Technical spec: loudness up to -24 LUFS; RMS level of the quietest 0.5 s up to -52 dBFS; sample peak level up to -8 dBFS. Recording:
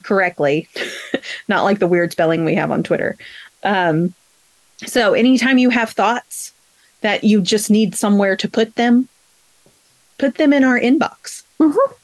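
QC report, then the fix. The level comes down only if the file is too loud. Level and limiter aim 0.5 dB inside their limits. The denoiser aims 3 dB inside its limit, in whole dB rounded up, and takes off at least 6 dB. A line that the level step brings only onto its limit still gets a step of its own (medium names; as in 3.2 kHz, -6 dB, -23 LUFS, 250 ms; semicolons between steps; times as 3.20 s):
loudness -16.0 LUFS: fail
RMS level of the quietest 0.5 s -56 dBFS: pass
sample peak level -5.0 dBFS: fail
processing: trim -8.5 dB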